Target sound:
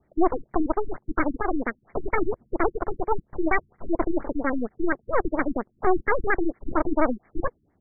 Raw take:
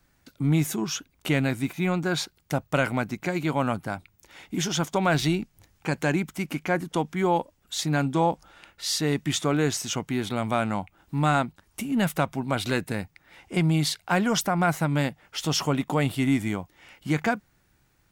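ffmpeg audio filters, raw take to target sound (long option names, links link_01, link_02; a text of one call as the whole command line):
ffmpeg -i in.wav -af "asetrate=102312,aresample=44100,aeval=exprs='0.398*(cos(1*acos(clip(val(0)/0.398,-1,1)))-cos(1*PI/2))+0.112*(cos(8*acos(clip(val(0)/0.398,-1,1)))-cos(8*PI/2))':channel_layout=same,afftfilt=real='re*lt(b*sr/1024,330*pow(2400/330,0.5+0.5*sin(2*PI*4.3*pts/sr)))':imag='im*lt(b*sr/1024,330*pow(2400/330,0.5+0.5*sin(2*PI*4.3*pts/sr)))':win_size=1024:overlap=0.75" out.wav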